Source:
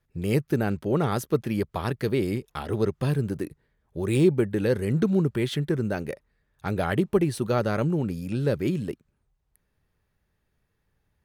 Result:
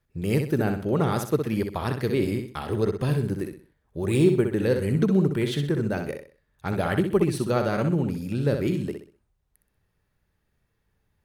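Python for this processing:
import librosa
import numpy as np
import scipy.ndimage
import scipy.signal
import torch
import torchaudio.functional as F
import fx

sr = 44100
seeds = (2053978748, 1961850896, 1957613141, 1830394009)

y = fx.echo_feedback(x, sr, ms=63, feedback_pct=33, wet_db=-6.5)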